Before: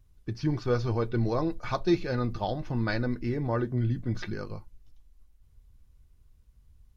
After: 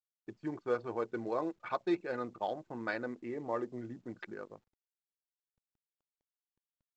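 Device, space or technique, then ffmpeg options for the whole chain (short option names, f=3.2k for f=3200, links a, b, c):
telephone: -filter_complex "[0:a]lowpass=5.3k,lowshelf=f=78:g=-3.5,asettb=1/sr,asplit=3[a][b][c];[a]atrim=end=3.144[d];[b]atrim=start=3.14:end=3.81,asetpts=PTS-STARTPTS,afade=t=in:d=0.004:c=qsin,afade=t=out:st=0.666:d=0.004:c=qsin,bandreject=f=1.5k:w=6.1[e];[c]atrim=start=3.806[f];[d][e]acrossfade=d=0.004:c1=hsin:c2=qsin[g];[g][f]acrossfade=d=0.004:c1=qsin:c2=hsin,anlmdn=2.51,highpass=360,lowpass=3.2k,volume=-3.5dB" -ar 16000 -c:a pcm_mulaw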